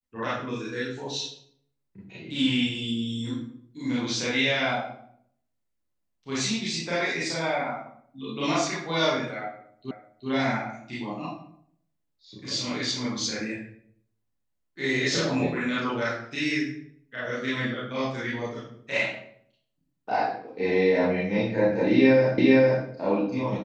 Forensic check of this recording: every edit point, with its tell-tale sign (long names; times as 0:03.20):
0:09.91: the same again, the last 0.38 s
0:22.38: the same again, the last 0.46 s